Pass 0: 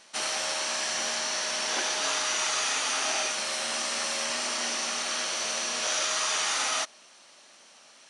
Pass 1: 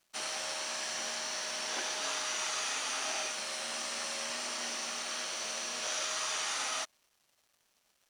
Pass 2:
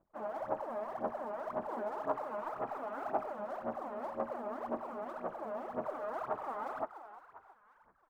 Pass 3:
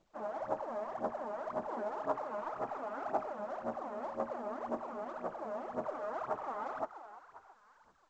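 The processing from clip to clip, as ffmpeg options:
ffmpeg -i in.wav -af "aeval=exprs='sgn(val(0))*max(abs(val(0))-0.00266,0)':channel_layout=same,volume=-6.5dB" out.wav
ffmpeg -i in.wav -filter_complex "[0:a]lowpass=frequency=1000:width=0.5412,lowpass=frequency=1000:width=1.3066,asplit=6[link_01][link_02][link_03][link_04][link_05][link_06];[link_02]adelay=344,afreqshift=78,volume=-13dB[link_07];[link_03]adelay=688,afreqshift=156,volume=-19.7dB[link_08];[link_04]adelay=1032,afreqshift=234,volume=-26.5dB[link_09];[link_05]adelay=1376,afreqshift=312,volume=-33.2dB[link_10];[link_06]adelay=1720,afreqshift=390,volume=-40dB[link_11];[link_01][link_07][link_08][link_09][link_10][link_11]amix=inputs=6:normalize=0,aphaser=in_gain=1:out_gain=1:delay=4.9:decay=0.77:speed=1.9:type=sinusoidal,volume=1dB" out.wav
ffmpeg -i in.wav -ar 16000 -c:a pcm_mulaw out.wav

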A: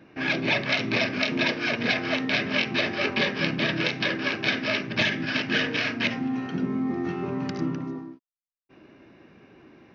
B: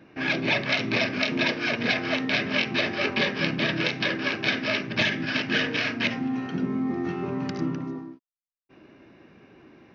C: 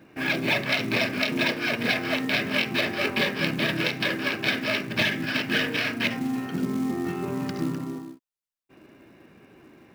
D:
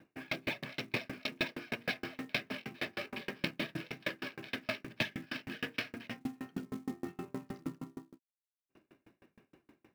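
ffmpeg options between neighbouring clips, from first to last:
ffmpeg -i in.wav -af anull out.wav
ffmpeg -i in.wav -af "acrusher=bits=5:mode=log:mix=0:aa=0.000001" out.wav
ffmpeg -i in.wav -af "aeval=exprs='val(0)*pow(10,-36*if(lt(mod(6.4*n/s,1),2*abs(6.4)/1000),1-mod(6.4*n/s,1)/(2*abs(6.4)/1000),(mod(6.4*n/s,1)-2*abs(6.4)/1000)/(1-2*abs(6.4)/1000))/20)':channel_layout=same,volume=-5dB" out.wav

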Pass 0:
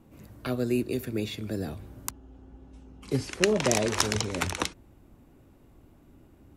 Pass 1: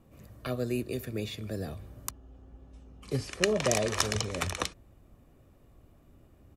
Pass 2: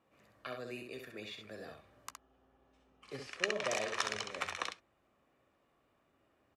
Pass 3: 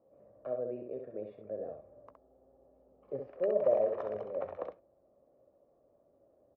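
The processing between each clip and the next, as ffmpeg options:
ffmpeg -i in.wav -af "aecho=1:1:1.7:0.36,volume=-3dB" out.wav
ffmpeg -i in.wav -filter_complex "[0:a]bandpass=frequency=1700:width_type=q:width=0.65:csg=0,asplit=2[link_01][link_02];[link_02]aecho=0:1:15|66:0.158|0.531[link_03];[link_01][link_03]amix=inputs=2:normalize=0,volume=-3.5dB" out.wav
ffmpeg -i in.wav -af "lowpass=frequency=570:width_type=q:width=4.9" out.wav

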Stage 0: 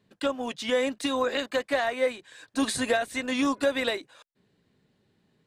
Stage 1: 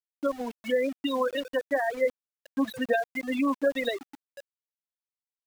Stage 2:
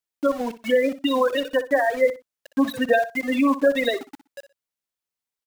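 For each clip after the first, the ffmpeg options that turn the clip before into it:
ffmpeg -i in.wav -filter_complex "[0:a]asplit=2[link_01][link_02];[link_02]adelay=716,lowpass=frequency=1300:poles=1,volume=-16.5dB,asplit=2[link_03][link_04];[link_04]adelay=716,lowpass=frequency=1300:poles=1,volume=0.49,asplit=2[link_05][link_06];[link_06]adelay=716,lowpass=frequency=1300:poles=1,volume=0.49,asplit=2[link_07][link_08];[link_08]adelay=716,lowpass=frequency=1300:poles=1,volume=0.49[link_09];[link_01][link_03][link_05][link_07][link_09]amix=inputs=5:normalize=0,afftfilt=real='re*gte(hypot(re,im),0.112)':imag='im*gte(hypot(re,im),0.112)':win_size=1024:overlap=0.75,aeval=exprs='val(0)*gte(abs(val(0)),0.01)':channel_layout=same" out.wav
ffmpeg -i in.wav -af "aecho=1:1:61|122:0.211|0.0402,volume=6.5dB" out.wav

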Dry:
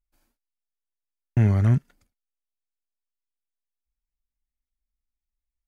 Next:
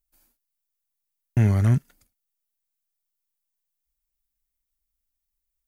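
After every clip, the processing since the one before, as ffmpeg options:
ffmpeg -i in.wav -af "aemphasis=mode=production:type=50kf" out.wav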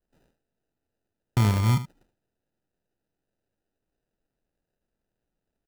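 ffmpeg -i in.wav -af "acrusher=samples=40:mix=1:aa=0.000001,aecho=1:1:75:0.224,volume=-2.5dB" out.wav

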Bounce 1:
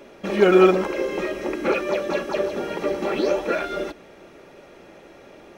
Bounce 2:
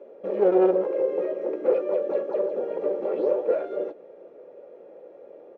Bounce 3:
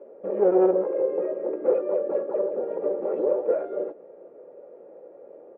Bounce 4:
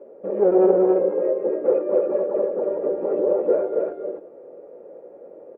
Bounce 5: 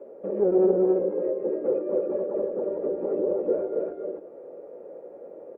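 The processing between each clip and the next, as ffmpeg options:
ffmpeg -i in.wav -filter_complex "[0:a]aeval=exprs='clip(val(0),-1,0.075)':channel_layout=same,bandpass=frequency=500:width_type=q:width=5.7:csg=0,asplit=2[link_01][link_02];[link_02]adelay=16,volume=-12.5dB[link_03];[link_01][link_03]amix=inputs=2:normalize=0,volume=7.5dB" out.wav
ffmpeg -i in.wav -af "lowpass=1500" out.wav
ffmpeg -i in.wav -af "lowshelf=frequency=410:gain=5,aecho=1:1:275:0.708" out.wav
ffmpeg -i in.wav -filter_complex "[0:a]acrossover=split=390[link_01][link_02];[link_02]acompressor=threshold=-38dB:ratio=2[link_03];[link_01][link_03]amix=inputs=2:normalize=0" out.wav

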